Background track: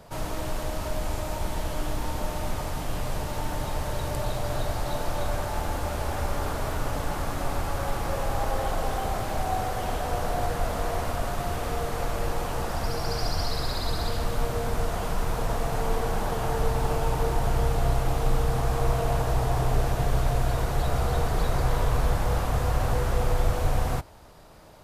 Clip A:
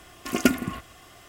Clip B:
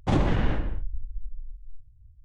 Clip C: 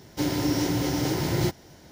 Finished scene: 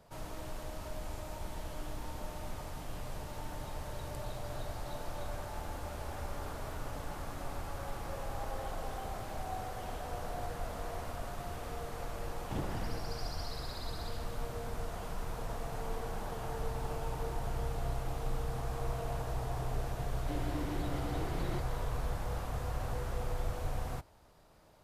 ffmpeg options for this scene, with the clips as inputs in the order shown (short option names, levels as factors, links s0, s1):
-filter_complex "[0:a]volume=0.251[s0];[3:a]lowpass=f=3600:w=0.5412,lowpass=f=3600:w=1.3066[s1];[2:a]atrim=end=2.24,asetpts=PTS-STARTPTS,volume=0.168,afade=t=in:d=0.004:c=hsin,afade=t=out:st=2.236:d=0.004:c=hsin,adelay=12430[s2];[s1]atrim=end=1.91,asetpts=PTS-STARTPTS,volume=0.188,afade=t=in:d=0.004:c=hsin,afade=t=out:st=1.906:d=0.004:c=hsin,adelay=20100[s3];[s0][s2][s3]amix=inputs=3:normalize=0"